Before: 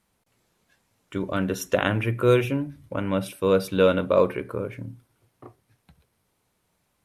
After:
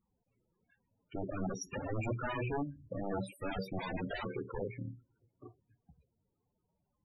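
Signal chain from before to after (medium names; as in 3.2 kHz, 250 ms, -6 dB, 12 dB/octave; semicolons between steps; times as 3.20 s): integer overflow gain 20.5 dB; loudest bins only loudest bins 16; trim -6 dB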